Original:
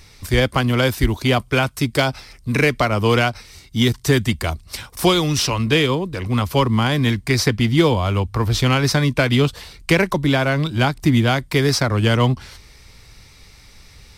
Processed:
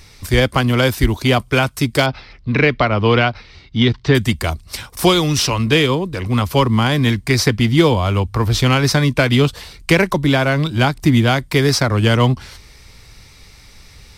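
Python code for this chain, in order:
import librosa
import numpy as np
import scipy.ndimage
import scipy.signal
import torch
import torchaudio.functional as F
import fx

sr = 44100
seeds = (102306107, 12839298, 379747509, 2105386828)

y = fx.lowpass(x, sr, hz=4200.0, slope=24, at=(2.06, 4.15))
y = y * 10.0 ** (2.5 / 20.0)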